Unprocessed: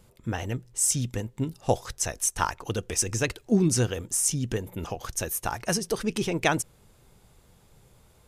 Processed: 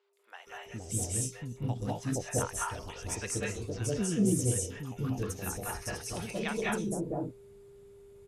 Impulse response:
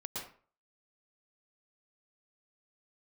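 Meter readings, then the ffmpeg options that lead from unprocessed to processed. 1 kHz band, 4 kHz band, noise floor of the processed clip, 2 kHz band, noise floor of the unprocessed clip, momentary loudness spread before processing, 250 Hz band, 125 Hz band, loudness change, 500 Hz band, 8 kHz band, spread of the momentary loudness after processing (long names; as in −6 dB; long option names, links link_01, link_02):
−7.5 dB, −9.0 dB, −54 dBFS, −6.5 dB, −59 dBFS, 9 LU, −4.0 dB, −3.5 dB, −6.0 dB, −5.5 dB, −8.0 dB, 12 LU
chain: -filter_complex "[0:a]aeval=exprs='val(0)+0.00794*sin(2*PI*400*n/s)':channel_layout=same,acrossover=split=690|4600[link_01][link_02][link_03];[link_03]adelay=130[link_04];[link_01]adelay=470[link_05];[link_05][link_02][link_04]amix=inputs=3:normalize=0[link_06];[1:a]atrim=start_sample=2205,atrim=end_sample=6615,asetrate=25578,aresample=44100[link_07];[link_06][link_07]afir=irnorm=-1:irlink=0,volume=-9dB"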